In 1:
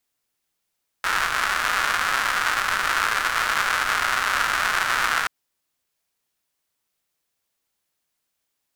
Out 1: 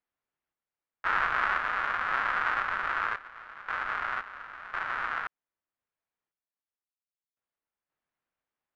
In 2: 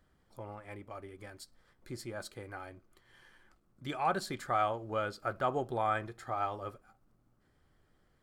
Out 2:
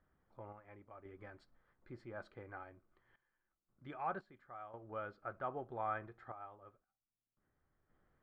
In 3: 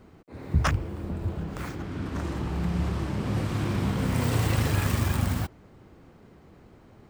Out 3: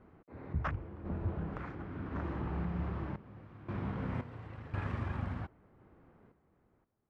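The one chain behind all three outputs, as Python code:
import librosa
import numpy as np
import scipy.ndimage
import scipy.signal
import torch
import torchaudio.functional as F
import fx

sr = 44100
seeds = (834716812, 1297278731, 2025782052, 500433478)

y = scipy.signal.sosfilt(scipy.signal.butter(2, 1900.0, 'lowpass', fs=sr, output='sos'), x)
y = fx.tremolo_random(y, sr, seeds[0], hz=1.9, depth_pct=95)
y = fx.peak_eq(y, sr, hz=1400.0, db=3.5, octaves=2.3)
y = F.gain(torch.from_numpy(y), -5.5).numpy()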